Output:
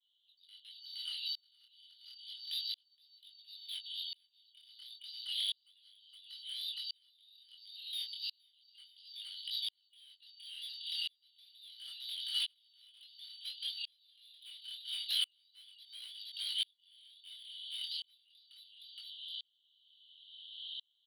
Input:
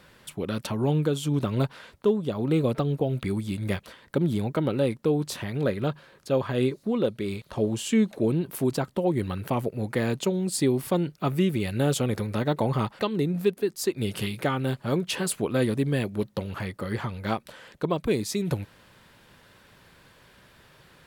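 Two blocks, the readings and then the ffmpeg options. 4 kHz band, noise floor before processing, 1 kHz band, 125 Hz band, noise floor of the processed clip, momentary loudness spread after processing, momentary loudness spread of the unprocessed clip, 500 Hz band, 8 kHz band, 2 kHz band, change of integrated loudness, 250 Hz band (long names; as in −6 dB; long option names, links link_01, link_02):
+2.0 dB, −57 dBFS, below −40 dB, below −40 dB, −76 dBFS, 22 LU, 7 LU, below −40 dB, −18.0 dB, −19.5 dB, −13.0 dB, below −40 dB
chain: -filter_complex "[0:a]afftfilt=real='real(if(lt(b,272),68*(eq(floor(b/68),0)*3+eq(floor(b/68),1)*2+eq(floor(b/68),2)*1+eq(floor(b/68),3)*0)+mod(b,68),b),0)':imag='imag(if(lt(b,272),68*(eq(floor(b/68),0)*3+eq(floor(b/68),1)*2+eq(floor(b/68),2)*1+eq(floor(b/68),3)*0)+mod(b,68),b),0)':win_size=2048:overlap=0.75,asuperpass=centerf=3400:order=12:qfactor=2.9,asplit=2[link_01][link_02];[link_02]acompressor=threshold=-53dB:ratio=20,volume=1.5dB[link_03];[link_01][link_03]amix=inputs=2:normalize=0,asoftclip=type=tanh:threshold=-39dB,agate=range=-33dB:threshold=-57dB:ratio=3:detection=peak,aecho=1:1:467|934|1401|1868:0.631|0.164|0.0427|0.0111,flanger=delay=19:depth=6.6:speed=0.31,aeval=exprs='val(0)*pow(10,-39*if(lt(mod(-0.72*n/s,1),2*abs(-0.72)/1000),1-mod(-0.72*n/s,1)/(2*abs(-0.72)/1000),(mod(-0.72*n/s,1)-2*abs(-0.72)/1000)/(1-2*abs(-0.72)/1000))/20)':channel_layout=same,volume=14.5dB"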